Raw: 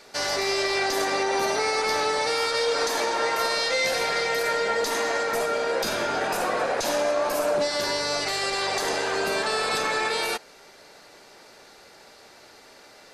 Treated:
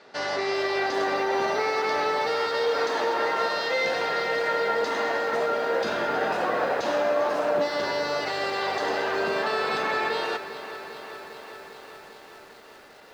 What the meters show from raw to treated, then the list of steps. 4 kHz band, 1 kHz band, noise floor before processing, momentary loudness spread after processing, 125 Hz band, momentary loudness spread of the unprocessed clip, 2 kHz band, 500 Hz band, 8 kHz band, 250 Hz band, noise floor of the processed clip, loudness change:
-6.0 dB, +0.5 dB, -51 dBFS, 13 LU, -1.5 dB, 2 LU, -1.0 dB, +0.5 dB, -13.5 dB, 0.0 dB, -49 dBFS, -1.0 dB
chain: band-pass 120–3100 Hz; band-stop 2.3 kHz, Q 13; bit-crushed delay 400 ms, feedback 80%, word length 8-bit, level -13 dB

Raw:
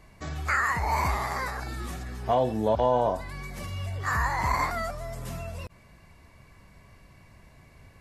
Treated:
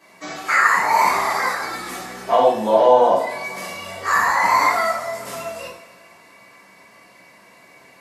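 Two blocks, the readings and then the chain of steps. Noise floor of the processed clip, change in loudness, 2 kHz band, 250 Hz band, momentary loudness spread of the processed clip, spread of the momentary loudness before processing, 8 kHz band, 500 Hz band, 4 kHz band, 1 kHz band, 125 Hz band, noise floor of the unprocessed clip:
-49 dBFS, +10.5 dB, +10.5 dB, +3.5 dB, 16 LU, 13 LU, +11.0 dB, +10.5 dB, +10.5 dB, +11.0 dB, -11.0 dB, -55 dBFS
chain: high-pass 370 Hz 12 dB/octave; two-slope reverb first 0.58 s, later 2.3 s, DRR -9.5 dB; trim +1 dB

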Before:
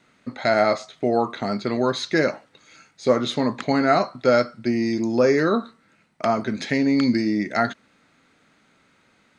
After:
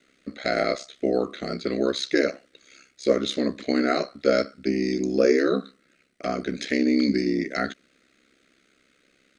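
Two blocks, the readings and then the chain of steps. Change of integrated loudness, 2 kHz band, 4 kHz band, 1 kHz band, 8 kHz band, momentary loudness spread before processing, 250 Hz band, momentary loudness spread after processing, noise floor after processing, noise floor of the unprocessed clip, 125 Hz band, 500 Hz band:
-3.0 dB, -3.5 dB, -0.5 dB, -8.5 dB, no reading, 7 LU, -2.5 dB, 9 LU, -65 dBFS, -61 dBFS, -6.5 dB, -2.5 dB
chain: static phaser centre 370 Hz, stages 4; ring modulator 33 Hz; trim +3 dB

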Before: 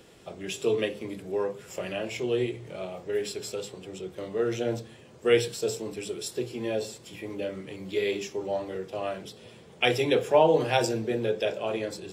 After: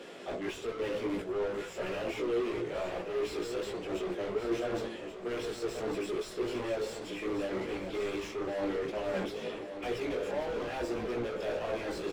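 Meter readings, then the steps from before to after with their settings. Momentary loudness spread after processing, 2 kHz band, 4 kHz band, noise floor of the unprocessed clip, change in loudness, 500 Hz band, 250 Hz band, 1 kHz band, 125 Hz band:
4 LU, -6.0 dB, -8.5 dB, -51 dBFS, -6.5 dB, -6.0 dB, -3.0 dB, -7.5 dB, -9.0 dB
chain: high-pass 160 Hz 24 dB/octave; gate -40 dBFS, range -8 dB; peaking EQ 920 Hz -4.5 dB 1 oct; reverse; compression, threshold -35 dBFS, peak gain reduction 17 dB; reverse; overdrive pedal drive 35 dB, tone 1 kHz, clips at -23.5 dBFS; chorus voices 6, 0.88 Hz, delay 18 ms, depth 1.9 ms; on a send: feedback delay 1131 ms, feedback 47%, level -10 dB

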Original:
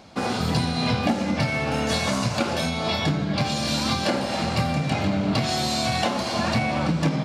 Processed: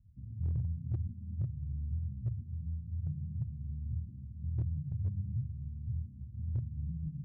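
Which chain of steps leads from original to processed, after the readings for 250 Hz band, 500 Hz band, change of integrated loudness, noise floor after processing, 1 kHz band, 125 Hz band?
-22.5 dB, under -35 dB, -14.5 dB, -50 dBFS, under -40 dB, -8.0 dB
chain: inverse Chebyshev low-pass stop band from 600 Hz, stop band 80 dB; hard clipper -27 dBFS, distortion -25 dB

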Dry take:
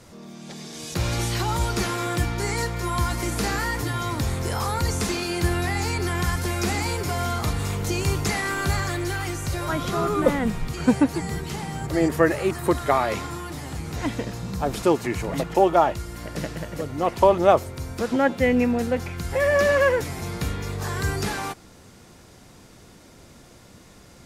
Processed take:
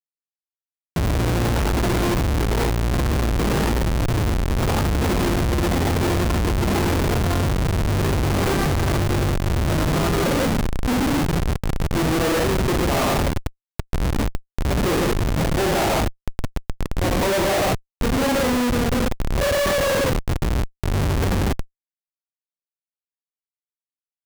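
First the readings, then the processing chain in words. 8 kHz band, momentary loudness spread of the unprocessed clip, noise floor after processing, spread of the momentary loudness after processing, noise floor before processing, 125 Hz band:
+1.5 dB, 12 LU, under -85 dBFS, 6 LU, -49 dBFS, +6.0 dB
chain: gated-style reverb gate 220 ms flat, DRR -4 dB; Schmitt trigger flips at -17.5 dBFS

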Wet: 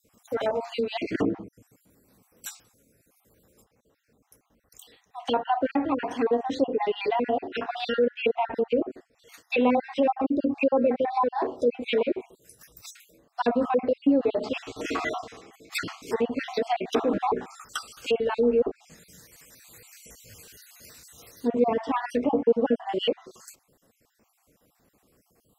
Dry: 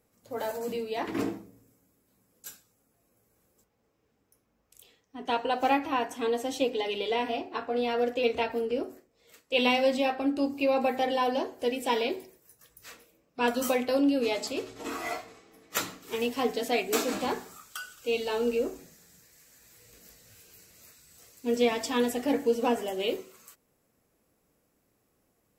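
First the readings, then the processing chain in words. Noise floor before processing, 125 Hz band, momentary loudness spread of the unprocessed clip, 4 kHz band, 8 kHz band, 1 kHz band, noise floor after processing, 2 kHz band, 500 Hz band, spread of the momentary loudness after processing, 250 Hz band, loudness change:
-73 dBFS, no reading, 13 LU, -2.0 dB, -4.5 dB, +2.5 dB, -71 dBFS, -0.5 dB, +3.5 dB, 13 LU, +3.5 dB, +2.5 dB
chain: random holes in the spectrogram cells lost 45%; low-pass that closes with the level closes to 1.1 kHz, closed at -28 dBFS; in parallel at +2 dB: peak limiter -26.5 dBFS, peak gain reduction 11.5 dB; on the sum: trim +2 dB

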